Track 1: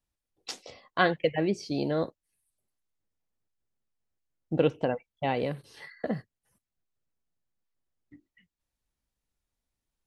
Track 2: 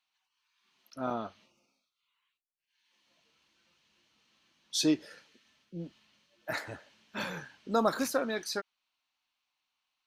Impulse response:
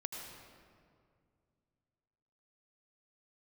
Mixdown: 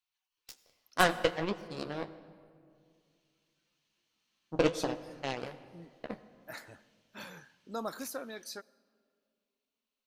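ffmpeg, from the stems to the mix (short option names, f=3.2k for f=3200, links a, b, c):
-filter_complex "[0:a]aeval=exprs='0.335*(cos(1*acos(clip(val(0)/0.335,-1,1)))-cos(1*PI/2))+0.075*(cos(2*acos(clip(val(0)/0.335,-1,1)))-cos(2*PI/2))+0.00237*(cos(5*acos(clip(val(0)/0.335,-1,1)))-cos(5*PI/2))+0.0473*(cos(7*acos(clip(val(0)/0.335,-1,1)))-cos(7*PI/2))':c=same,flanger=delay=7.9:depth=8.9:regen=-47:speed=1.2:shape=sinusoidal,volume=1dB,asplit=3[a][b][c];[b]volume=-9dB[d];[1:a]volume=-11dB,asplit=2[e][f];[f]volume=-20.5dB[g];[c]apad=whole_len=443908[h];[e][h]sidechaincompress=threshold=-32dB:ratio=8:attack=16:release=315[i];[2:a]atrim=start_sample=2205[j];[d][g]amix=inputs=2:normalize=0[k];[k][j]afir=irnorm=-1:irlink=0[l];[a][i][l]amix=inputs=3:normalize=0,highshelf=f=7.7k:g=11"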